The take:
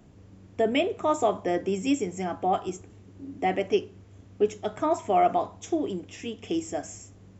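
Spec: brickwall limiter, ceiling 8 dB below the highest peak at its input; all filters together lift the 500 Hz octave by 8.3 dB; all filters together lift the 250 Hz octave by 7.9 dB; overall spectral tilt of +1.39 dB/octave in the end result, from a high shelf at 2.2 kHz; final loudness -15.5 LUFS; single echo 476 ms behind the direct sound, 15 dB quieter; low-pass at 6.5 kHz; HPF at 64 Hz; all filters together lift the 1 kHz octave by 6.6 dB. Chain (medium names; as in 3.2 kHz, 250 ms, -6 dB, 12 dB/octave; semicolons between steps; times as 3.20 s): high-pass 64 Hz; low-pass 6.5 kHz; peaking EQ 250 Hz +7 dB; peaking EQ 500 Hz +8 dB; peaking EQ 1 kHz +6 dB; treble shelf 2.2 kHz -8 dB; peak limiter -11.5 dBFS; delay 476 ms -15 dB; trim +7.5 dB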